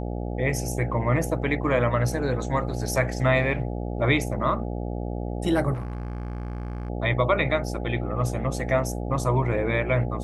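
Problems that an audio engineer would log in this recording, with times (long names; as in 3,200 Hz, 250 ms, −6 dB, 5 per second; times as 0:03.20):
mains buzz 60 Hz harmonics 14 −30 dBFS
0:05.73–0:06.90: clipping −28 dBFS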